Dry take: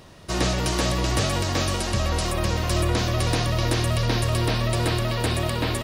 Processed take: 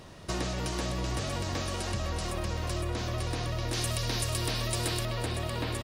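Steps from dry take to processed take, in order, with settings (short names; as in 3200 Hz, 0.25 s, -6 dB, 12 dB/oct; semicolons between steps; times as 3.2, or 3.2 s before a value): bell 7400 Hz +3 dB 1.4 oct; echo 0.486 s -13 dB; compressor 6:1, threshold -28 dBFS, peak gain reduction 10.5 dB; high shelf 3700 Hz -4.5 dB, from 3.73 s +8.5 dB, from 5.05 s -3 dB; gain -1 dB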